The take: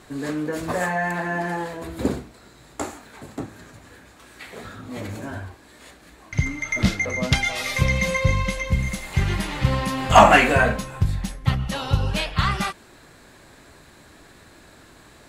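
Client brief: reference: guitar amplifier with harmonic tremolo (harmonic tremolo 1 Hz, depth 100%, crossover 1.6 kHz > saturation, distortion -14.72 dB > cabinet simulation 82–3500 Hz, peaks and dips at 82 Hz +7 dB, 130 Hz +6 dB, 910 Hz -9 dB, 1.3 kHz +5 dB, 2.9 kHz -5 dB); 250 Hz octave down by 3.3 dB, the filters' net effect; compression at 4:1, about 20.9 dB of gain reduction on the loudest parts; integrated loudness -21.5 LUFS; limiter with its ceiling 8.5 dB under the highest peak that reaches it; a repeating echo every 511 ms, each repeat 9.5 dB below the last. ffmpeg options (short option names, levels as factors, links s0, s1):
-filter_complex "[0:a]equalizer=f=250:t=o:g=-6.5,acompressor=threshold=0.0224:ratio=4,alimiter=level_in=1.26:limit=0.0631:level=0:latency=1,volume=0.794,aecho=1:1:511|1022|1533|2044:0.335|0.111|0.0365|0.012,acrossover=split=1600[s0][s1];[s0]aeval=exprs='val(0)*(1-1/2+1/2*cos(2*PI*1*n/s))':c=same[s2];[s1]aeval=exprs='val(0)*(1-1/2-1/2*cos(2*PI*1*n/s))':c=same[s3];[s2][s3]amix=inputs=2:normalize=0,asoftclip=threshold=0.02,highpass=82,equalizer=f=82:t=q:w=4:g=7,equalizer=f=130:t=q:w=4:g=6,equalizer=f=910:t=q:w=4:g=-9,equalizer=f=1300:t=q:w=4:g=5,equalizer=f=2900:t=q:w=4:g=-5,lowpass=f=3500:w=0.5412,lowpass=f=3500:w=1.3066,volume=13.3"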